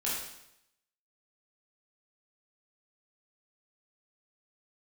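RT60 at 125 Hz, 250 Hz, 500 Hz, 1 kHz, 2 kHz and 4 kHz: 0.85 s, 0.80 s, 0.80 s, 0.80 s, 0.80 s, 0.80 s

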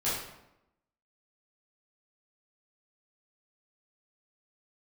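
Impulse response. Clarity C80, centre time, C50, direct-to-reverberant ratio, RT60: 4.5 dB, 61 ms, 1.0 dB, -10.5 dB, 0.85 s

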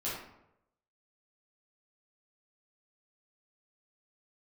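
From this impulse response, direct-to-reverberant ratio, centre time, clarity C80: -9.0 dB, 59 ms, 5.0 dB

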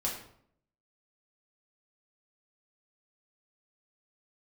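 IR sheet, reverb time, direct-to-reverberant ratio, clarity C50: 0.65 s, -4.0 dB, 5.5 dB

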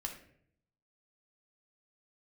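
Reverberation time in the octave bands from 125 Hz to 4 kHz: 1.0 s, 0.85 s, 0.75 s, 0.55 s, 0.60 s, 0.40 s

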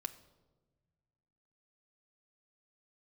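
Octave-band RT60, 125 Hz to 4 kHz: 2.3 s, 1.9 s, 1.5 s, 1.0 s, 0.75 s, 0.75 s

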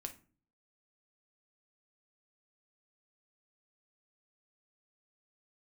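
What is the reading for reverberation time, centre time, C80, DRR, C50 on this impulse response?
0.40 s, 8 ms, 20.0 dB, 5.5 dB, 13.0 dB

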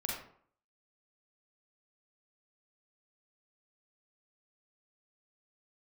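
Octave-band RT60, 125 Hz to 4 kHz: 0.55 s, 0.60 s, 0.55 s, 0.60 s, 0.45 s, 0.35 s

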